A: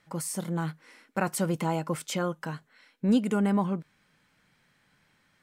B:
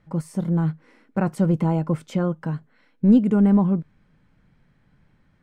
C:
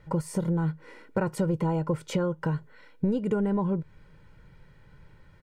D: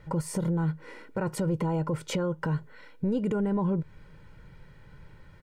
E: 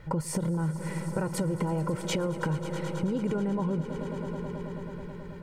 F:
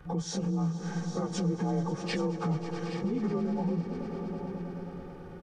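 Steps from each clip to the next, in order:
spectral tilt −4 dB per octave
comb filter 2.1 ms, depth 63%; downward compressor 5 to 1, threshold −29 dBFS, peak gain reduction 13 dB; level +5 dB
brickwall limiter −23 dBFS, peak gain reduction 8.5 dB; level +3 dB
on a send: echo that builds up and dies away 108 ms, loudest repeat 5, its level −16 dB; on the sum: downward compressor, threshold −29 dBFS, peak gain reduction 6.5 dB; level +3.5 dB
partials spread apart or drawn together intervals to 89%; single-tap delay 820 ms −11.5 dB

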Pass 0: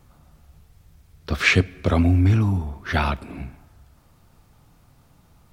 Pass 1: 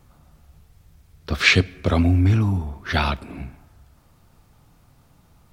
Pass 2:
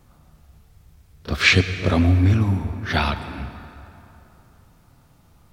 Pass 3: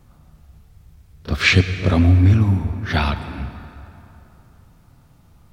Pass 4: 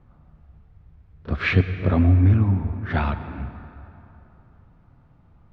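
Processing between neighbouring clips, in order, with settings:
dynamic equaliser 4,100 Hz, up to +7 dB, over −40 dBFS, Q 1.4
echo ahead of the sound 32 ms −12 dB; on a send at −11.5 dB: convolution reverb RT60 3.2 s, pre-delay 88 ms
bass and treble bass +4 dB, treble −1 dB
low-pass filter 1,900 Hz 12 dB per octave; level −3 dB

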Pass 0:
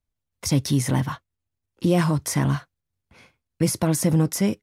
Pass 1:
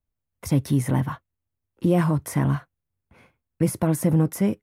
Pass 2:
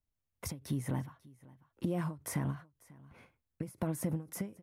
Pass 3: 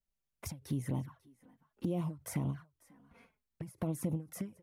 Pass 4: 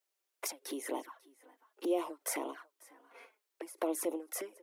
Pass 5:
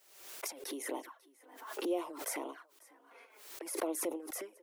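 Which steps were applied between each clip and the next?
parametric band 5,200 Hz −13 dB 1.7 octaves
downward compressor 5 to 1, threshold −27 dBFS, peak gain reduction 11 dB; single-tap delay 543 ms −22.5 dB; every ending faded ahead of time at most 190 dB per second; level −4.5 dB
flanger swept by the level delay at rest 5.2 ms, full sweep at −30.5 dBFS
Butterworth high-pass 330 Hz 48 dB per octave; level +8 dB
background raised ahead of every attack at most 65 dB per second; level −2.5 dB

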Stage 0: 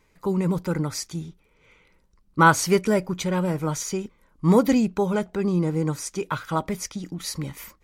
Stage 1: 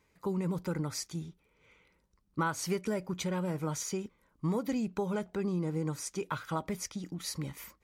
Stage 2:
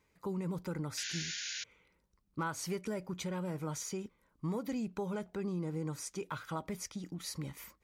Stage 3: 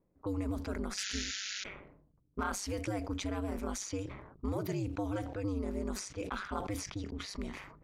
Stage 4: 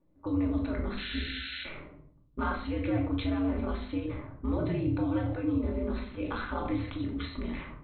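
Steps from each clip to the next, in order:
high-pass filter 42 Hz; downward compressor 6 to 1, threshold −22 dBFS, peak gain reduction 11.5 dB; level −6.5 dB
in parallel at −3 dB: brickwall limiter −30 dBFS, peak gain reduction 9.5 dB; on the sum: hard clipping −20.5 dBFS, distortion −39 dB; sound drawn into the spectrogram noise, 0:00.97–0:01.64, 1,400–7,100 Hz −33 dBFS; level −7.5 dB
low-pass that shuts in the quiet parts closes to 520 Hz, open at −34.5 dBFS; ring modulation 99 Hz; level that may fall only so fast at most 60 dB per second; level +4 dB
linear-phase brick-wall low-pass 4,300 Hz; rectangular room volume 650 cubic metres, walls furnished, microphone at 2.5 metres

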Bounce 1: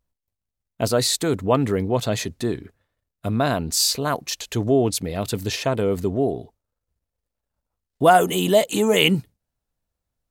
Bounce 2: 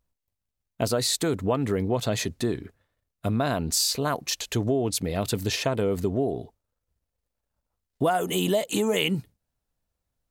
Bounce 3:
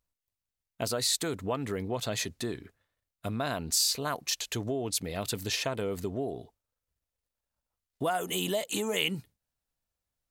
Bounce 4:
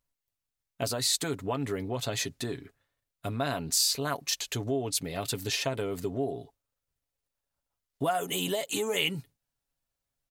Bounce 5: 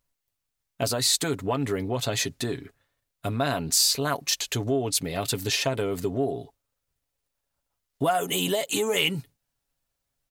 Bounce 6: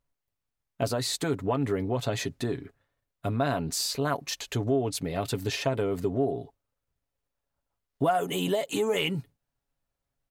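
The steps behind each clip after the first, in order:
downward compressor 5 to 1, threshold −21 dBFS, peak gain reduction 11 dB
tilt shelving filter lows −3.5 dB, about 870 Hz; level −5.5 dB
comb filter 7.2 ms, depth 46%
soft clipping −14 dBFS, distortion −29 dB; level +5 dB
high-shelf EQ 2,400 Hz −10.5 dB

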